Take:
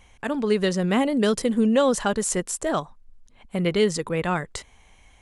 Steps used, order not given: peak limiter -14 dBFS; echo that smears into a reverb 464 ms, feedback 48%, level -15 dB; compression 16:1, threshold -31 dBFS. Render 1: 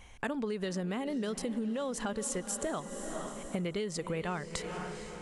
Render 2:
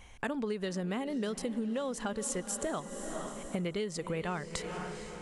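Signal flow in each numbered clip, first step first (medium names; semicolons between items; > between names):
echo that smears into a reverb > peak limiter > compression; echo that smears into a reverb > compression > peak limiter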